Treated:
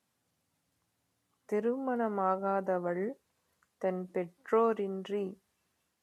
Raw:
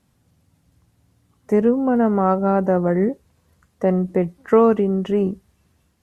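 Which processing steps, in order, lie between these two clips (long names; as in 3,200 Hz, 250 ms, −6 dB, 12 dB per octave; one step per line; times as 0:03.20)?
high-pass filter 640 Hz 6 dB per octave
level −8.5 dB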